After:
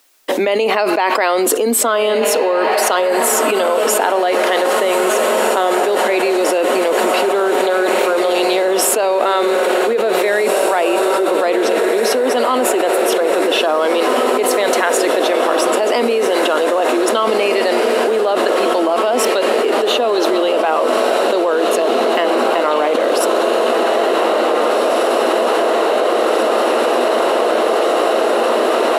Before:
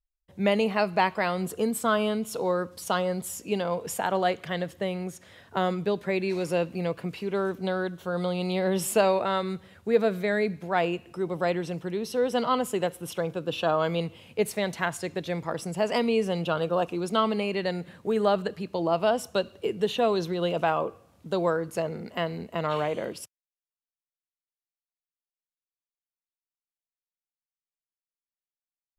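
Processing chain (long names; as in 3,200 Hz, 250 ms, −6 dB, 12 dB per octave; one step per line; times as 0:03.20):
elliptic high-pass filter 260 Hz, stop band 40 dB
feedback delay with all-pass diffusion 1,832 ms, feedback 73%, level −8.5 dB
envelope flattener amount 100%
level +2 dB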